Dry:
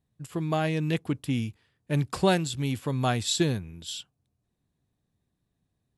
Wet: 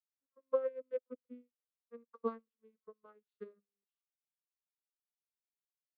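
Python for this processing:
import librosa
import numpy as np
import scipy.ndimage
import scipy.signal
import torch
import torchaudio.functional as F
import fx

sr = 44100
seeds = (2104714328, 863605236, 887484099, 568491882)

y = fx.vocoder_glide(x, sr, note=61, semitones=-9)
y = fx.double_bandpass(y, sr, hz=760.0, octaves=1.2)
y = fx.upward_expand(y, sr, threshold_db=-54.0, expansion=2.5)
y = F.gain(torch.from_numpy(y), 3.5).numpy()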